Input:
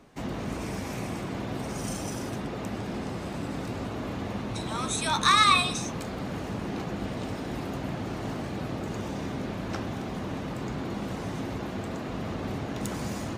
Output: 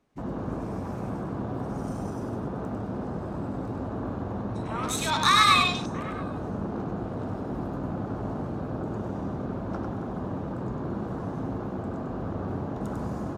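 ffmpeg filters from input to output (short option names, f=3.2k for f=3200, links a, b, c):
-filter_complex "[0:a]asplit=2[a][b];[b]aecho=0:1:678:0.1[c];[a][c]amix=inputs=2:normalize=0,afwtdn=0.0126,asplit=2[d][e];[e]aecho=0:1:99:0.596[f];[d][f]amix=inputs=2:normalize=0"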